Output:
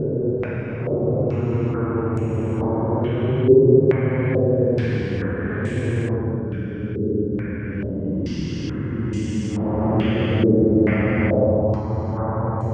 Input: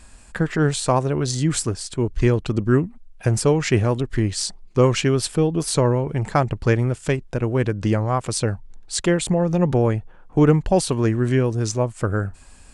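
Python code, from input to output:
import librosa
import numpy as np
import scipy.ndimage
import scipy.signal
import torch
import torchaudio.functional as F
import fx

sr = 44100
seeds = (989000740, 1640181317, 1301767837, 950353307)

y = fx.spec_steps(x, sr, hold_ms=100)
y = fx.low_shelf_res(y, sr, hz=100.0, db=-7.5, q=1.5)
y = fx.paulstretch(y, sr, seeds[0], factor=18.0, window_s=0.05, from_s=7.35)
y = fx.filter_held_lowpass(y, sr, hz=2.3, low_hz=390.0, high_hz=7600.0)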